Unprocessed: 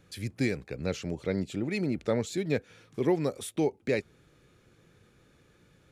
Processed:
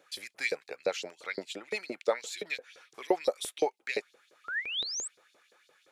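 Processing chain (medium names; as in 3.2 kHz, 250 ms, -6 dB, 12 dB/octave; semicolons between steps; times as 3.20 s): painted sound rise, 4.44–5.08 s, 1.2–8.3 kHz -37 dBFS; LFO high-pass saw up 5.8 Hz 430–5100 Hz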